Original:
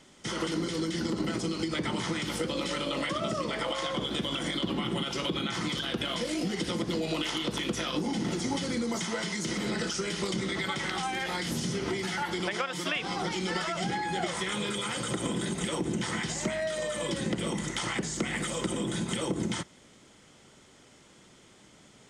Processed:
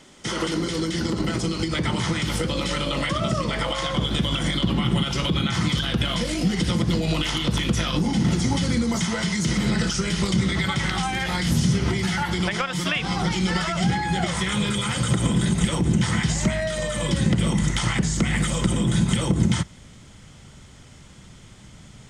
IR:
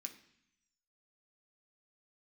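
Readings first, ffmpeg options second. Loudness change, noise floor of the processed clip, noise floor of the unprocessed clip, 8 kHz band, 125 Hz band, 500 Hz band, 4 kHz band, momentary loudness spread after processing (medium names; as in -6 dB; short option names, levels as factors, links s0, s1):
+8.0 dB, -46 dBFS, -57 dBFS, +6.5 dB, +14.5 dB, +3.5 dB, +6.5 dB, 4 LU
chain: -af "asubboost=boost=7:cutoff=130,volume=2.11"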